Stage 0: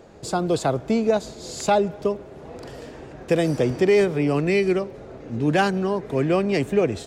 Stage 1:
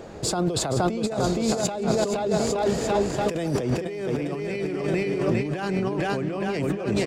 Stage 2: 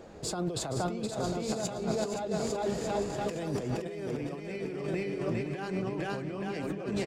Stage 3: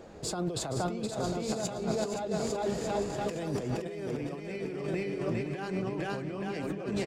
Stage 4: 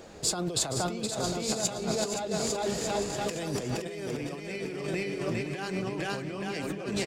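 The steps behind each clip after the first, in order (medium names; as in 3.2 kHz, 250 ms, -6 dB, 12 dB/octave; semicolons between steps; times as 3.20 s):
on a send: bouncing-ball echo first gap 470 ms, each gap 0.85×, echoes 5; on the sum: compressor with a negative ratio -27 dBFS, ratio -1; trim +2 dB
flange 0.45 Hz, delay 3.5 ms, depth 4.5 ms, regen -72%; on a send: delay 520 ms -9.5 dB; on the sum: trim -4.5 dB
no audible change
treble shelf 2.1 kHz +10 dB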